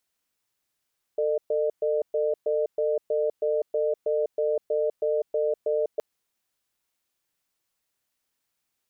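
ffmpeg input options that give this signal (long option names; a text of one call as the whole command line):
ffmpeg -f lavfi -i "aevalsrc='0.0596*(sin(2*PI*448*t)+sin(2*PI*605*t))*clip(min(mod(t,0.32),0.2-mod(t,0.32))/0.005,0,1)':duration=4.82:sample_rate=44100" out.wav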